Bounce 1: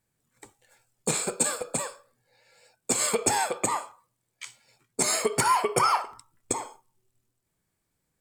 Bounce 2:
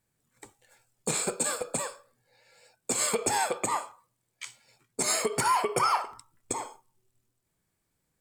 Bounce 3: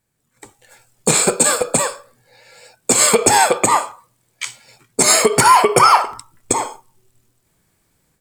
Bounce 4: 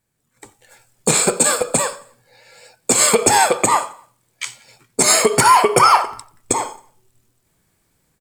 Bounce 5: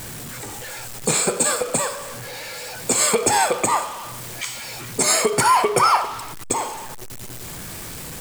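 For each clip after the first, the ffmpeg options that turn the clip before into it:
ffmpeg -i in.wav -af "alimiter=limit=-16dB:level=0:latency=1:release=94" out.wav
ffmpeg -i in.wav -af "dynaudnorm=framelen=370:gausssize=3:maxgain=10dB,volume=5dB" out.wav
ffmpeg -i in.wav -af "aecho=1:1:89|178|267:0.0668|0.0334|0.0167,volume=-1dB" out.wav
ffmpeg -i in.wav -af "aeval=exprs='val(0)+0.5*0.075*sgn(val(0))':channel_layout=same,volume=-5.5dB" out.wav

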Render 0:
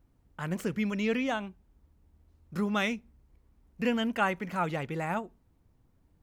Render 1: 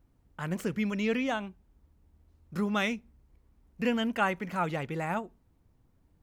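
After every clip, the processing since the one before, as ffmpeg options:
ffmpeg -i in.wav -af anull out.wav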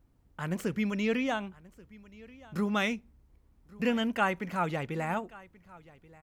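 ffmpeg -i in.wav -af "aecho=1:1:1132:0.0794" out.wav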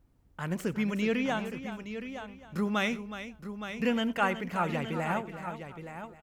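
ffmpeg -i in.wav -af "aecho=1:1:90|369|868:0.106|0.266|0.316" out.wav

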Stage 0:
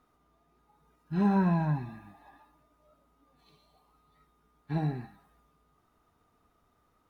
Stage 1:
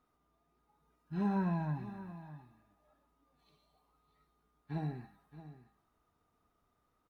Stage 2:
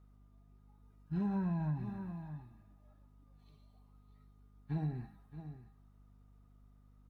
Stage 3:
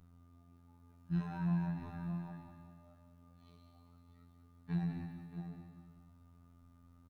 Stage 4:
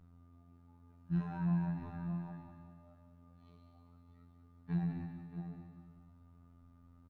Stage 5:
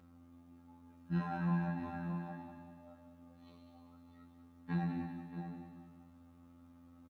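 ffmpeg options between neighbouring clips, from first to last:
ffmpeg -i in.wav -af "aecho=1:1:623:0.188,volume=-7.5dB" out.wav
ffmpeg -i in.wav -af "lowshelf=frequency=190:gain=12,acompressor=threshold=-30dB:ratio=6,aeval=exprs='val(0)+0.00112*(sin(2*PI*50*n/s)+sin(2*PI*2*50*n/s)/2+sin(2*PI*3*50*n/s)/3+sin(2*PI*4*50*n/s)/4+sin(2*PI*5*50*n/s)/5)':channel_layout=same,volume=-2dB" out.wav
ffmpeg -i in.wav -filter_complex "[0:a]acrossover=split=180|930[link_01][link_02][link_03];[link_02]acompressor=threshold=-51dB:ratio=6[link_04];[link_01][link_04][link_03]amix=inputs=3:normalize=0,afftfilt=real='hypot(re,im)*cos(PI*b)':imag='0':win_size=2048:overlap=0.75,aecho=1:1:194|388|582|776|970:0.376|0.18|0.0866|0.0416|0.02,volume=7dB" out.wav
ffmpeg -i in.wav -af "highshelf=frequency=3500:gain=-11.5,volume=1dB" out.wav
ffmpeg -i in.wav -af "highpass=frequency=210:poles=1,aecho=1:1:3.7:0.74,volume=5dB" out.wav

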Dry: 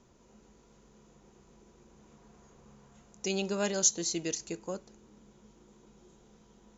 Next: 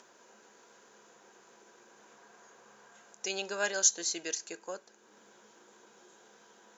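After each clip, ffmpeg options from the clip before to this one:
ffmpeg -i in.wav -filter_complex "[0:a]highpass=530,equalizer=frequency=1600:width=7.9:gain=12,asplit=2[link_01][link_02];[link_02]acompressor=mode=upward:threshold=-46dB:ratio=2.5,volume=0dB[link_03];[link_01][link_03]amix=inputs=2:normalize=0,volume=-5.5dB" out.wav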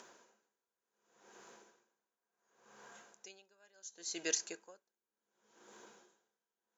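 ffmpeg -i in.wav -af "aeval=exprs='val(0)*pow(10,-37*(0.5-0.5*cos(2*PI*0.69*n/s))/20)':channel_layout=same,volume=1.5dB" out.wav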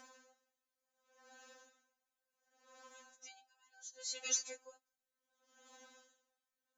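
ffmpeg -i in.wav -af "afftfilt=real='re*3.46*eq(mod(b,12),0)':imag='im*3.46*eq(mod(b,12),0)':win_size=2048:overlap=0.75,volume=2dB" out.wav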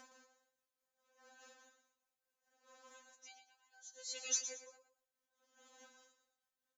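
ffmpeg -i in.wav -af "tremolo=f=4.8:d=0.44,aecho=1:1:115|230|345:0.299|0.0866|0.0251" out.wav

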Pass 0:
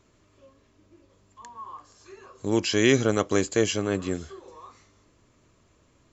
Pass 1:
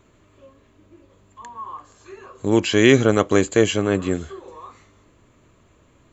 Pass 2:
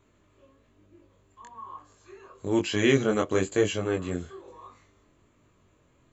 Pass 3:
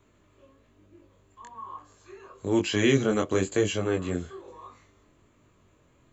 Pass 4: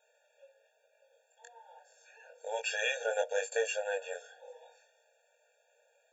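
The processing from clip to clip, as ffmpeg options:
ffmpeg -i in.wav -af "equalizer=frequency=5300:width=2.5:gain=-12,volume=6.5dB" out.wav
ffmpeg -i in.wav -af "flanger=delay=20:depth=3.1:speed=1.1,volume=-5dB" out.wav
ffmpeg -i in.wav -filter_complex "[0:a]acrossover=split=340|3000[link_01][link_02][link_03];[link_02]acompressor=threshold=-26dB:ratio=6[link_04];[link_01][link_04][link_03]amix=inputs=3:normalize=0,volume=1.5dB" out.wav
ffmpeg -i in.wav -af "afftfilt=real='re*eq(mod(floor(b*sr/1024/470),2),1)':imag='im*eq(mod(floor(b*sr/1024/470),2),1)':win_size=1024:overlap=0.75" out.wav

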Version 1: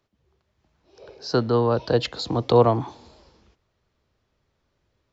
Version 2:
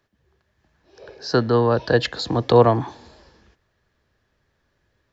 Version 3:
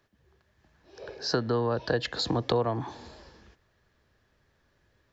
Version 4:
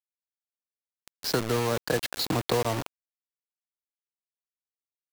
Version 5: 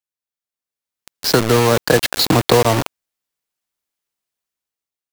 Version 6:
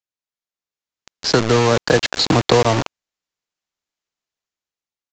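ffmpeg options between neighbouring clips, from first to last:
ffmpeg -i in.wav -af "equalizer=frequency=1700:width_type=o:width=0.22:gain=12,volume=2.5dB" out.wav
ffmpeg -i in.wav -af "acompressor=threshold=-25dB:ratio=4" out.wav
ffmpeg -i in.wav -af "acrusher=bits=4:mix=0:aa=0.000001" out.wav
ffmpeg -i in.wav -af "dynaudnorm=framelen=280:gausssize=7:maxgain=11.5dB,volume=2.5dB" out.wav
ffmpeg -i in.wav -af "aresample=16000,aresample=44100,volume=-1dB" out.wav

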